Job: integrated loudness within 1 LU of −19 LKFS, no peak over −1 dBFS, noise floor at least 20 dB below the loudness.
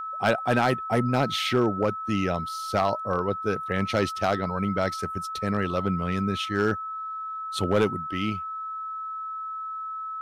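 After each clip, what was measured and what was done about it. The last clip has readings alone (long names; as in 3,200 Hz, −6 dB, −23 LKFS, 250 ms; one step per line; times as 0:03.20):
share of clipped samples 0.4%; peaks flattened at −14.0 dBFS; interfering tone 1,300 Hz; level of the tone −31 dBFS; integrated loudness −27.0 LKFS; sample peak −14.0 dBFS; target loudness −19.0 LKFS
→ clipped peaks rebuilt −14 dBFS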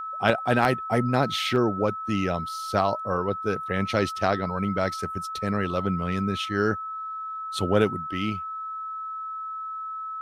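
share of clipped samples 0.0%; interfering tone 1,300 Hz; level of the tone −31 dBFS
→ notch filter 1,300 Hz, Q 30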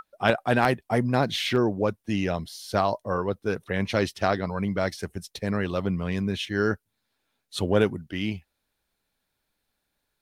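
interfering tone none found; integrated loudness −26.5 LKFS; sample peak −5.0 dBFS; target loudness −19.0 LKFS
→ level +7.5 dB
brickwall limiter −1 dBFS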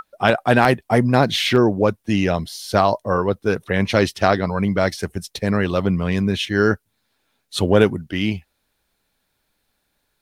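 integrated loudness −19.5 LKFS; sample peak −1.0 dBFS; background noise floor −72 dBFS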